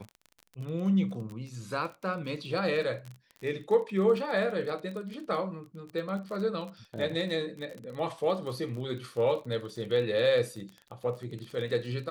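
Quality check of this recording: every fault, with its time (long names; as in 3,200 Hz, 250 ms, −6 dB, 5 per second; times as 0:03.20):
surface crackle 25 per second −36 dBFS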